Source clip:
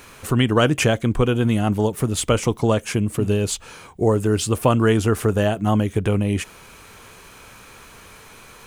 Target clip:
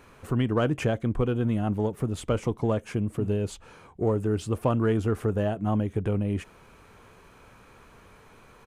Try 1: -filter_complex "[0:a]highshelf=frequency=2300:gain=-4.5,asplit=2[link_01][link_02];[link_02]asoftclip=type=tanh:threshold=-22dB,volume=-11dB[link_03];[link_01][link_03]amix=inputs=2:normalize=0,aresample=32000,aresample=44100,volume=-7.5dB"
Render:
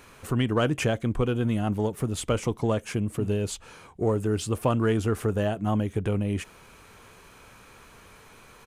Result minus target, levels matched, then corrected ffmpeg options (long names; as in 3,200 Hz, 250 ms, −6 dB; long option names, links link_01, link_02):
4,000 Hz band +5.5 dB
-filter_complex "[0:a]highshelf=frequency=2300:gain=-13.5,asplit=2[link_01][link_02];[link_02]asoftclip=type=tanh:threshold=-22dB,volume=-11dB[link_03];[link_01][link_03]amix=inputs=2:normalize=0,aresample=32000,aresample=44100,volume=-7.5dB"